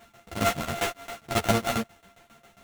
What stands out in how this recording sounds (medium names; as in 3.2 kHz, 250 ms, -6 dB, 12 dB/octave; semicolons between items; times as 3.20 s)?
a buzz of ramps at a fixed pitch in blocks of 64 samples; tremolo saw down 7.4 Hz, depth 95%; aliases and images of a low sample rate 4.9 kHz, jitter 20%; a shimmering, thickened sound